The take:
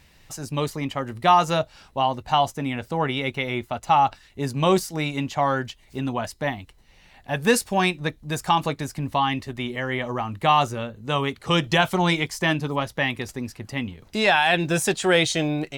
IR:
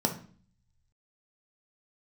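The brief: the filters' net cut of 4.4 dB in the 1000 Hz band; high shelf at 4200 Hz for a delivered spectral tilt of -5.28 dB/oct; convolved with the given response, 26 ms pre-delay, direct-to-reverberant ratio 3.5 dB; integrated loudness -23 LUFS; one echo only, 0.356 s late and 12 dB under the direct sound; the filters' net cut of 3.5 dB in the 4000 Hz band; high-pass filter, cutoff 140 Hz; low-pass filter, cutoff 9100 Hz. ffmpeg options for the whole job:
-filter_complex "[0:a]highpass=140,lowpass=9.1k,equalizer=f=1k:t=o:g=-6,equalizer=f=4k:t=o:g=-8.5,highshelf=f=4.2k:g=8,aecho=1:1:356:0.251,asplit=2[a][b];[1:a]atrim=start_sample=2205,adelay=26[c];[b][c]afir=irnorm=-1:irlink=0,volume=-12dB[d];[a][d]amix=inputs=2:normalize=0,volume=-1dB"

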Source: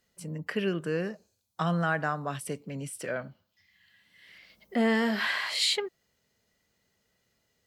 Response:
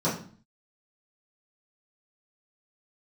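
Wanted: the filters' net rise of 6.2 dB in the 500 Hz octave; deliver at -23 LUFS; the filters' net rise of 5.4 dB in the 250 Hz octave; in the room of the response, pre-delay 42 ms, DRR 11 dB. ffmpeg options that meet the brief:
-filter_complex "[0:a]equalizer=f=250:t=o:g=5.5,equalizer=f=500:t=o:g=6,asplit=2[a][b];[1:a]atrim=start_sample=2205,adelay=42[c];[b][c]afir=irnorm=-1:irlink=0,volume=-23dB[d];[a][d]amix=inputs=2:normalize=0,volume=2.5dB"

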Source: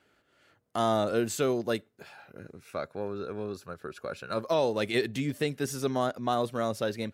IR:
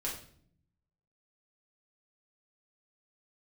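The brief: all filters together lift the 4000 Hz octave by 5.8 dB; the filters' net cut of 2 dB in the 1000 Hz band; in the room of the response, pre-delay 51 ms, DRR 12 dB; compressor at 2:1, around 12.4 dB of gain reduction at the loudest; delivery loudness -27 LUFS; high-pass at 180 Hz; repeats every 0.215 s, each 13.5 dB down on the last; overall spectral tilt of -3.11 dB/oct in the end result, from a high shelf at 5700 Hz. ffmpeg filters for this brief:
-filter_complex "[0:a]highpass=180,equalizer=f=1k:t=o:g=-3.5,equalizer=f=4k:t=o:g=4,highshelf=f=5.7k:g=8.5,acompressor=threshold=-46dB:ratio=2,aecho=1:1:215|430:0.211|0.0444,asplit=2[a][b];[1:a]atrim=start_sample=2205,adelay=51[c];[b][c]afir=irnorm=-1:irlink=0,volume=-14.5dB[d];[a][d]amix=inputs=2:normalize=0,volume=14.5dB"

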